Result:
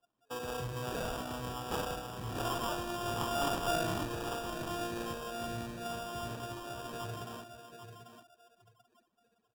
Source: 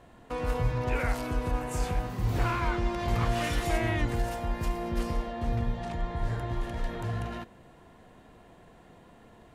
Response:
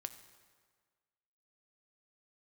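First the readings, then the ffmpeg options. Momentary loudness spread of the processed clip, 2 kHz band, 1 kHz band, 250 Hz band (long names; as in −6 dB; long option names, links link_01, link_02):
13 LU, −6.5 dB, −3.0 dB, −6.5 dB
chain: -filter_complex "[0:a]highpass=93,bass=frequency=250:gain=-7,treble=frequency=4000:gain=13,aecho=1:1:790|1580|2370|3160:0.398|0.119|0.0358|0.0107[link_01];[1:a]atrim=start_sample=2205,asetrate=48510,aresample=44100[link_02];[link_01][link_02]afir=irnorm=-1:irlink=0,afftdn=noise_reduction=25:noise_floor=-45,acrossover=split=130[link_03][link_04];[link_04]acrusher=samples=21:mix=1:aa=0.000001[link_05];[link_03][link_05]amix=inputs=2:normalize=0"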